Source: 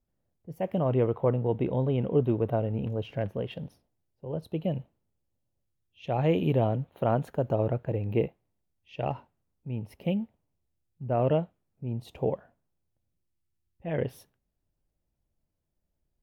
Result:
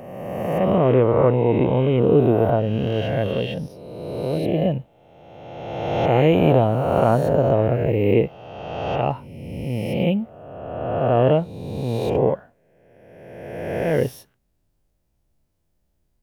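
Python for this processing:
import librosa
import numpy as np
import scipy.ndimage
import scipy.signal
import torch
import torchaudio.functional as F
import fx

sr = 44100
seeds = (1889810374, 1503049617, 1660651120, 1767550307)

y = fx.spec_swells(x, sr, rise_s=1.77)
y = y * 10.0 ** (6.5 / 20.0)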